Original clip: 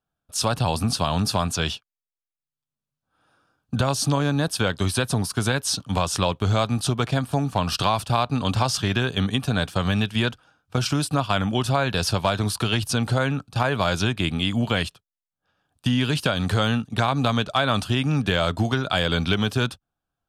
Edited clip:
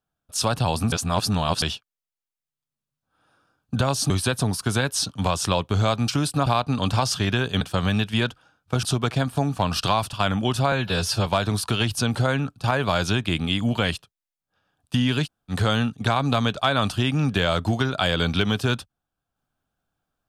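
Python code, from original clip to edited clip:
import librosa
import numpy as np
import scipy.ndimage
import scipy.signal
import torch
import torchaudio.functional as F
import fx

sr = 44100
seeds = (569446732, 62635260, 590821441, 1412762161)

y = fx.edit(x, sr, fx.reverse_span(start_s=0.92, length_s=0.7),
    fx.cut(start_s=4.1, length_s=0.71),
    fx.swap(start_s=6.79, length_s=1.3, other_s=10.85, other_length_s=0.38),
    fx.cut(start_s=9.24, length_s=0.39),
    fx.stretch_span(start_s=11.82, length_s=0.36, factor=1.5),
    fx.room_tone_fill(start_s=16.17, length_s=0.26, crossfade_s=0.06), tone=tone)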